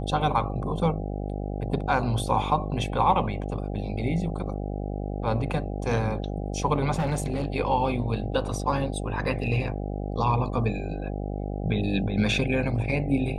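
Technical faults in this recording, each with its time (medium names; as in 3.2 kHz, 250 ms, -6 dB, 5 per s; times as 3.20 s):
buzz 50 Hz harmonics 16 -31 dBFS
6.94–7.46 s: clipped -21 dBFS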